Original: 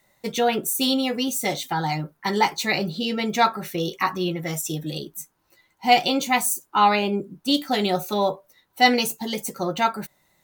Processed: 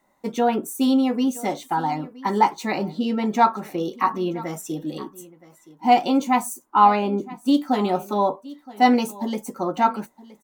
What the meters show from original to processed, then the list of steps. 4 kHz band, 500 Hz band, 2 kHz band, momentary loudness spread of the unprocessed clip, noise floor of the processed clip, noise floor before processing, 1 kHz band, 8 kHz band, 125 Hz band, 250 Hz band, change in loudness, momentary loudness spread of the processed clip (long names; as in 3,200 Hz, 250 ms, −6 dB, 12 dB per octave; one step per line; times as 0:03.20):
−9.5 dB, 0.0 dB, −6.0 dB, 11 LU, −60 dBFS, −69 dBFS, +2.5 dB, −8.0 dB, −3.0 dB, +4.0 dB, +1.0 dB, 12 LU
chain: graphic EQ with 10 bands 125 Hz −9 dB, 250 Hz +11 dB, 1,000 Hz +9 dB, 2,000 Hz −3 dB, 4,000 Hz −6 dB, 16,000 Hz −7 dB
on a send: single-tap delay 970 ms −19.5 dB
on the sum: level −4 dB